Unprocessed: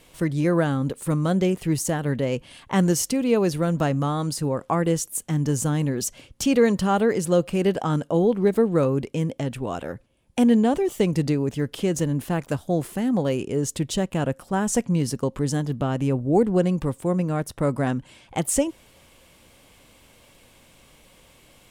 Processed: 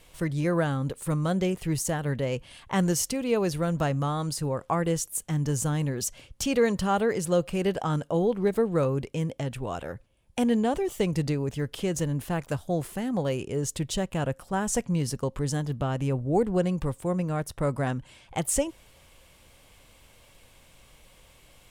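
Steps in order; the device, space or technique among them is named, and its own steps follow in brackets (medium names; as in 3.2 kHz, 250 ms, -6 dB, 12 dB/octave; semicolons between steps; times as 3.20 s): low shelf boost with a cut just above (bass shelf 69 Hz +7 dB; peaking EQ 260 Hz -5.5 dB 1.2 oct); trim -2.5 dB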